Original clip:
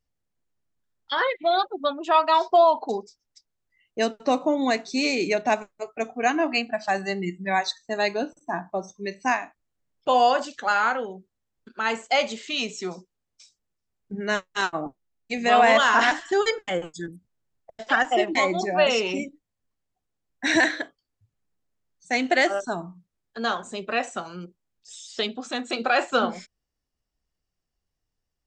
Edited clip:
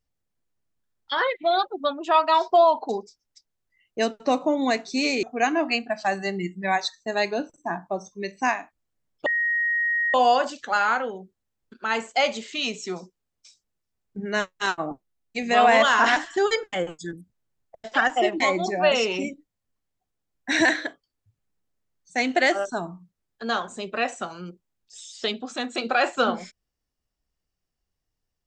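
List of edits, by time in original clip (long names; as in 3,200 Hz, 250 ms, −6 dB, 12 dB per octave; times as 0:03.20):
0:05.23–0:06.06: remove
0:10.09: insert tone 1,880 Hz −20.5 dBFS 0.88 s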